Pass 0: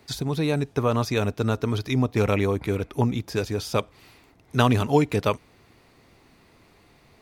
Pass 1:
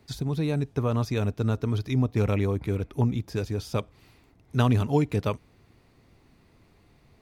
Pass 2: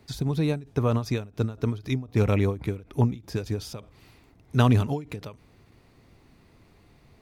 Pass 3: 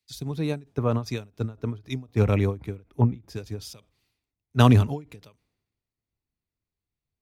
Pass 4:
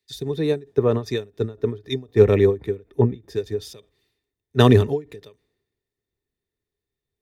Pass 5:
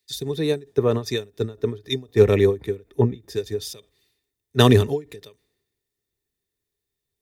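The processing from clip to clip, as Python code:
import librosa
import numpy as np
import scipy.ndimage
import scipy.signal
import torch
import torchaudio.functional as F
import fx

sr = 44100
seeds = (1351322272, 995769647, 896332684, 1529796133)

y1 = fx.low_shelf(x, sr, hz=260.0, db=9.5)
y1 = F.gain(torch.from_numpy(y1), -7.5).numpy()
y2 = fx.end_taper(y1, sr, db_per_s=170.0)
y2 = F.gain(torch.from_numpy(y2), 2.5).numpy()
y3 = fx.band_widen(y2, sr, depth_pct=100)
y3 = F.gain(torch.from_numpy(y3), -3.0).numpy()
y4 = fx.small_body(y3, sr, hz=(410.0, 1800.0, 3600.0), ring_ms=35, db=15)
y5 = fx.high_shelf(y4, sr, hz=3500.0, db=10.0)
y5 = F.gain(torch.from_numpy(y5), -1.0).numpy()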